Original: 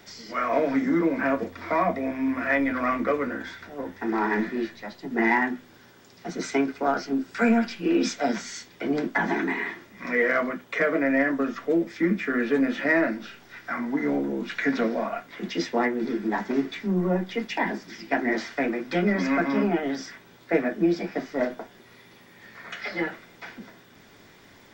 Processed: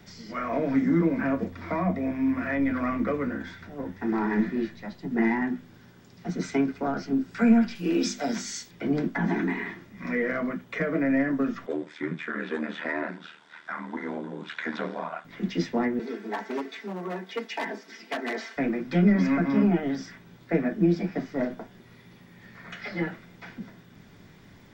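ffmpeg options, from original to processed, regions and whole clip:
ffmpeg -i in.wav -filter_complex "[0:a]asettb=1/sr,asplit=3[link_01][link_02][link_03];[link_01]atrim=end=7.754[link_04];[link_02]atrim=start=7.75:end=8.71,asetpts=PTS-STARTPTS,afade=type=in:duration=0.004:curve=qsin,afade=type=out:start_time=0.956:duration=0.004:curve=qsin,bass=frequency=250:gain=-5,treble=frequency=4000:gain=11,bandreject=frequency=50:width_type=h:width=6,bandreject=frequency=100:width_type=h:width=6,bandreject=frequency=150:width_type=h:width=6,bandreject=frequency=200:width_type=h:width=6,bandreject=frequency=250:width_type=h:width=6,bandreject=frequency=300:width_type=h:width=6,bandreject=frequency=350:width_type=h:width=6[link_05];[link_03]atrim=start=8.706[link_06];[link_04][link_05]acrossfade=duration=0.004:curve1=hsin:curve2=qsin[link_07];[link_07][link_06]acrossfade=duration=0.004:curve1=qsin:curve2=hsin,asettb=1/sr,asplit=3[link_08][link_09][link_10];[link_08]atrim=end=11.664[link_11];[link_09]atrim=start=11.66:end=15.25,asetpts=PTS-STARTPTS,afade=type=in:duration=0.004:curve=qsin,afade=type=out:start_time=3.586:duration=0.004:curve=qsin,highpass=410,equalizer=frequency=980:width_type=q:width=4:gain=9,equalizer=frequency=1500:width_type=q:width=4:gain=5,equalizer=frequency=3500:width_type=q:width=4:gain=8,equalizer=frequency=5600:width_type=q:width=4:gain=-3,equalizer=frequency=8200:width_type=q:width=4:gain=6,lowpass=frequency=9300:width=0.5412,lowpass=frequency=9300:width=1.3066,aeval=exprs='val(0)*sin(2*PI*39*n/s)':channel_layout=same[link_12];[link_10]atrim=start=15.246[link_13];[link_11][link_12]acrossfade=duration=0.004:curve1=hsin:curve2=qsin[link_14];[link_14][link_13]acrossfade=duration=0.004:curve1=qsin:curve2=hsin,asettb=1/sr,asplit=3[link_15][link_16][link_17];[link_15]atrim=end=15.994[link_18];[link_16]atrim=start=15.99:end=18.57,asetpts=PTS-STARTPTS,afade=type=in:duration=0.004:curve=qsin,afade=type=out:start_time=2.576:duration=0.004:curve=qsin,aecho=1:1:4.5:0.65,atrim=end_sample=113778,aeval=exprs='0.133*(abs(mod(val(0)/0.133+3,4)-2)-1)':channel_layout=same,highpass=frequency=350:width=0.5412,highpass=frequency=350:width=1.3066[link_19];[link_17]atrim=start=18.566[link_20];[link_18][link_19]acrossfade=duration=0.004:curve1=hsin:curve2=qsin[link_21];[link_21][link_20]acrossfade=duration=0.004:curve1=qsin:curve2=hsin,equalizer=frequency=170:width=2.9:gain=4.5,acrossover=split=470[link_22][link_23];[link_23]acompressor=threshold=-24dB:ratio=6[link_24];[link_22][link_24]amix=inputs=2:normalize=0,bass=frequency=250:gain=10,treble=frequency=4000:gain=-2,volume=-4dB" out.wav

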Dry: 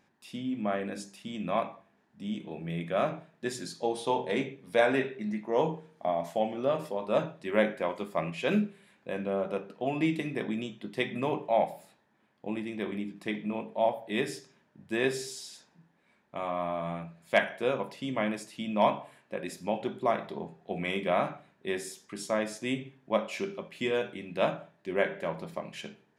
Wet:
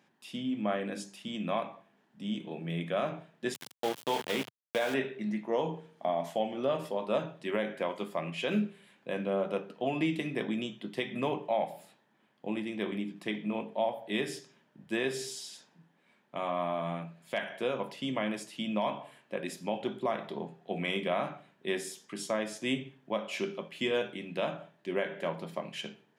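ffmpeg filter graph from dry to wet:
ffmpeg -i in.wav -filter_complex "[0:a]asettb=1/sr,asplit=3[link_01][link_02][link_03];[link_01]atrim=end=3.544[link_04];[link_02]atrim=start=3.54:end=4.94,asetpts=PTS-STARTPTS,afade=type=in:duration=0.004:curve=qsin,afade=type=out:start_time=1.396:duration=0.004:curve=qsin,highpass=frequency=79:poles=1,equalizer=frequency=3100:width_type=o:width=0.55:gain=3,aeval=exprs='val(0)*gte(abs(val(0)),0.0282)':channel_layout=same[link_05];[link_03]atrim=start=4.936[link_06];[link_04][link_05]acrossfade=duration=0.004:curve1=hsin:curve2=qsin[link_07];[link_07][link_06]acrossfade=duration=0.004:curve1=qsin:curve2=hsin,highpass=frequency=120:width=0.5412,highpass=frequency=120:width=1.3066,equalizer=frequency=3100:width_type=o:width=0.31:gain=5.5,alimiter=limit=-19.5dB:level=0:latency=1:release=202" out.wav

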